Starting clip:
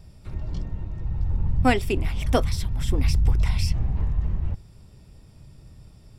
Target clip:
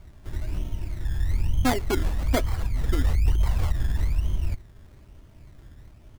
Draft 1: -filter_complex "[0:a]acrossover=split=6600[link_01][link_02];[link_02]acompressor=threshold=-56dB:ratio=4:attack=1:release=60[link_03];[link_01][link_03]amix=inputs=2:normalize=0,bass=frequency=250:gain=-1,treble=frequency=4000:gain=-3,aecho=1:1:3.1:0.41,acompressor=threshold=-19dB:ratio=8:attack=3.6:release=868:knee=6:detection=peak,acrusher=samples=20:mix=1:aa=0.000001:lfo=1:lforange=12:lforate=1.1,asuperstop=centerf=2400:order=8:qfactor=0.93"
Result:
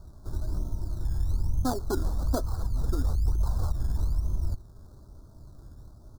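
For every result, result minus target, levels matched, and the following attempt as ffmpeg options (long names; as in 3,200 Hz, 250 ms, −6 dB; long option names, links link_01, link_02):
2,000 Hz band −10.5 dB; downward compressor: peak gain reduction +5.5 dB
-filter_complex "[0:a]acrossover=split=6600[link_01][link_02];[link_02]acompressor=threshold=-56dB:ratio=4:attack=1:release=60[link_03];[link_01][link_03]amix=inputs=2:normalize=0,bass=frequency=250:gain=-1,treble=frequency=4000:gain=-3,aecho=1:1:3.1:0.41,acompressor=threshold=-19dB:ratio=8:attack=3.6:release=868:knee=6:detection=peak,acrusher=samples=20:mix=1:aa=0.000001:lfo=1:lforange=12:lforate=1.1"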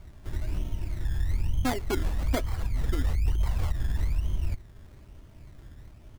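downward compressor: peak gain reduction +5.5 dB
-filter_complex "[0:a]acrossover=split=6600[link_01][link_02];[link_02]acompressor=threshold=-56dB:ratio=4:attack=1:release=60[link_03];[link_01][link_03]amix=inputs=2:normalize=0,bass=frequency=250:gain=-1,treble=frequency=4000:gain=-3,aecho=1:1:3.1:0.41,acompressor=threshold=-12.5dB:ratio=8:attack=3.6:release=868:knee=6:detection=peak,acrusher=samples=20:mix=1:aa=0.000001:lfo=1:lforange=12:lforate=1.1"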